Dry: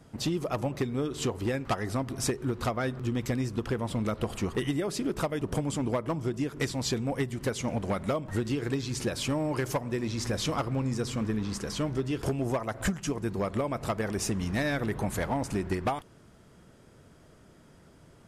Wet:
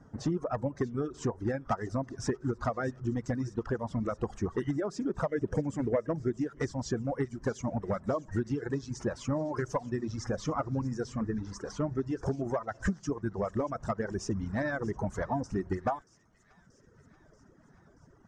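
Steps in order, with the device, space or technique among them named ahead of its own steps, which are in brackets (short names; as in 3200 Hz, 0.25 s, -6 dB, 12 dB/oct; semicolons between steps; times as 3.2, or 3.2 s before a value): clip after many re-uploads (LPF 5700 Hz 24 dB/oct; bin magnitudes rounded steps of 15 dB); band shelf 3200 Hz -15 dB 1.3 oct; reverb removal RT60 1.7 s; 5.28–6.31 graphic EQ 500/1000/2000/4000 Hz +6/-8/+9/-9 dB; thin delay 0.632 s, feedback 68%, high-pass 2600 Hz, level -17.5 dB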